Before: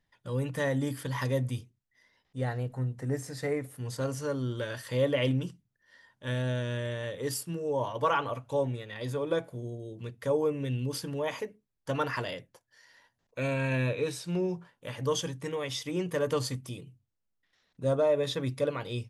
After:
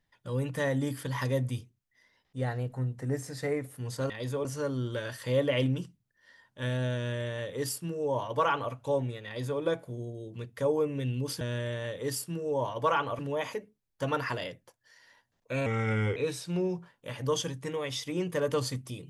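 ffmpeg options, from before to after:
ffmpeg -i in.wav -filter_complex "[0:a]asplit=7[link_01][link_02][link_03][link_04][link_05][link_06][link_07];[link_01]atrim=end=4.102[link_08];[link_02]atrim=start=8.908:end=9.262[link_09];[link_03]atrim=start=4.098:end=11.062[link_10];[link_04]atrim=start=6.598:end=8.382[link_11];[link_05]atrim=start=11.058:end=13.534[link_12];[link_06]atrim=start=13.53:end=13.95,asetpts=PTS-STARTPTS,asetrate=37044,aresample=44100[link_13];[link_07]atrim=start=13.946[link_14];[link_08][link_09]acrossfade=duration=0.004:curve1=hsin:curve2=hsin[link_15];[link_15][link_10]acrossfade=duration=0.004:curve1=hsin:curve2=hsin[link_16];[link_16][link_11]acrossfade=duration=0.004:curve1=hsin:curve2=hsin[link_17];[link_17][link_12]acrossfade=duration=0.004:curve1=hsin:curve2=hsin[link_18];[link_18][link_13]acrossfade=duration=0.004:curve1=hsin:curve2=hsin[link_19];[link_19][link_14]acrossfade=duration=0.004:curve1=hsin:curve2=hsin" out.wav

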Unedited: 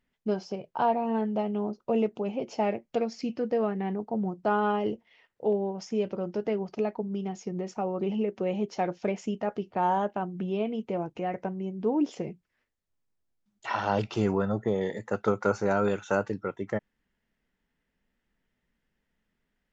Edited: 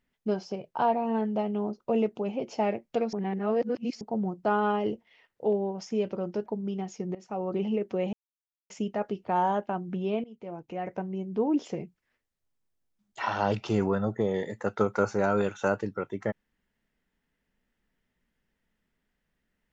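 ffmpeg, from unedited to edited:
ffmpeg -i in.wav -filter_complex "[0:a]asplit=8[link_01][link_02][link_03][link_04][link_05][link_06][link_07][link_08];[link_01]atrim=end=3.132[link_09];[link_02]atrim=start=3.128:end=4.012,asetpts=PTS-STARTPTS,areverse[link_10];[link_03]atrim=start=4.008:end=6.462[link_11];[link_04]atrim=start=6.928:end=7.62,asetpts=PTS-STARTPTS,afade=type=out:start_time=0.688:duration=0.004:curve=hsin:silence=0.149624[link_12];[link_05]atrim=start=7.62:end=8.6,asetpts=PTS-STARTPTS,afade=type=in:duration=0.31:silence=0.149624,afade=type=out:start_time=0.976:duration=0.004:curve=hsin[link_13];[link_06]atrim=start=8.6:end=9.17,asetpts=PTS-STARTPTS,volume=0[link_14];[link_07]atrim=start=9.17:end=10.71,asetpts=PTS-STARTPTS,afade=type=in:duration=0.004:curve=hsin,afade=type=out:start_time=1.536:duration=0.004:curve=hsin:silence=0.1[link_15];[link_08]atrim=start=10.71,asetpts=PTS-STARTPTS,afade=type=in:duration=0.83:silence=0.1[link_16];[link_09][link_10]acrossfade=duration=0.004:curve1=hsin:curve2=hsin[link_17];[link_17][link_11]acrossfade=duration=0.004:curve1=hsin:curve2=hsin[link_18];[link_12][link_13][link_14][link_15][link_16]concat=n=5:v=0:a=1[link_19];[link_18][link_19]acrossfade=duration=0.004:curve1=hsin:curve2=hsin" out.wav

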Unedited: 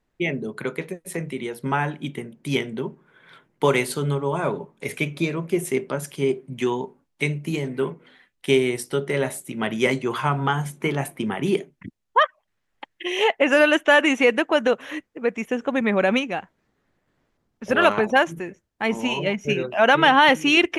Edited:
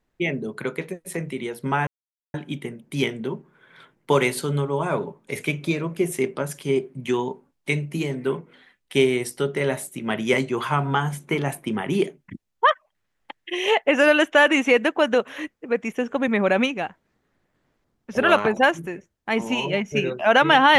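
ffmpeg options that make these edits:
ffmpeg -i in.wav -filter_complex "[0:a]asplit=2[link_01][link_02];[link_01]atrim=end=1.87,asetpts=PTS-STARTPTS,afade=type=out:start_time=1.866:duration=0.004:curve=hsin,apad=pad_dur=0.47[link_03];[link_02]atrim=start=1.87,asetpts=PTS-STARTPTS,afade=type=in:duration=0.004:curve=hsin[link_04];[link_03][link_04]concat=n=2:v=0:a=1" out.wav

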